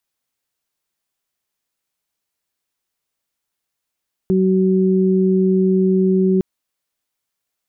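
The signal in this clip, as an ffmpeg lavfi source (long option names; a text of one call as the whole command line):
ffmpeg -f lavfi -i "aevalsrc='0.2*sin(2*PI*188*t)+0.158*sin(2*PI*376*t)':duration=2.11:sample_rate=44100" out.wav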